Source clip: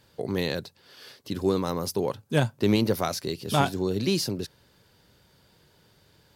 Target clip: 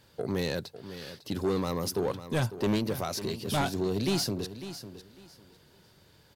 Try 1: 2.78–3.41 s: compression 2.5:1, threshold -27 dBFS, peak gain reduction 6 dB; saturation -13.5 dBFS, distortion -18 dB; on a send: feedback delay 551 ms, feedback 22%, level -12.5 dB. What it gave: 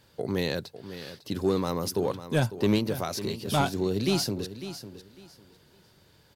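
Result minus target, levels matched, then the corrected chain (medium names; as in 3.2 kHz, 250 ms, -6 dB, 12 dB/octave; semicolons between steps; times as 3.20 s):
saturation: distortion -8 dB
2.78–3.41 s: compression 2.5:1, threshold -27 dBFS, peak gain reduction 6 dB; saturation -22 dBFS, distortion -9 dB; on a send: feedback delay 551 ms, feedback 22%, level -12.5 dB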